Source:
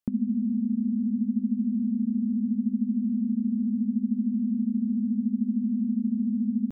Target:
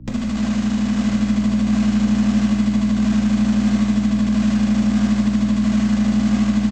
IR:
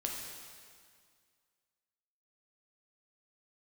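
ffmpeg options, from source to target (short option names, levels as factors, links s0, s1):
-filter_complex "[0:a]afwtdn=0.0178,aemphasis=mode=reproduction:type=bsi,acompressor=threshold=0.1:ratio=12,aresample=16000,acrusher=bits=2:mode=log:mix=0:aa=0.000001,aresample=44100,aeval=exprs='val(0)+0.0224*(sin(2*PI*60*n/s)+sin(2*PI*2*60*n/s)/2+sin(2*PI*3*60*n/s)/3+sin(2*PI*4*60*n/s)/4+sin(2*PI*5*60*n/s)/5)':c=same,aeval=exprs='0.316*(cos(1*acos(clip(val(0)/0.316,-1,1)))-cos(1*PI/2))+0.0112*(cos(7*acos(clip(val(0)/0.316,-1,1)))-cos(7*PI/2))':c=same,acrossover=split=130|170[s0][s1][s2];[s1]aeval=exprs='0.0422*sin(PI/2*1.58*val(0)/0.0422)':c=same[s3];[s0][s3][s2]amix=inputs=3:normalize=0,asplit=2[s4][s5];[s5]adelay=1050,volume=0.398,highshelf=f=4000:g=-23.6[s6];[s4][s6]amix=inputs=2:normalize=0[s7];[1:a]atrim=start_sample=2205[s8];[s7][s8]afir=irnorm=-1:irlink=0"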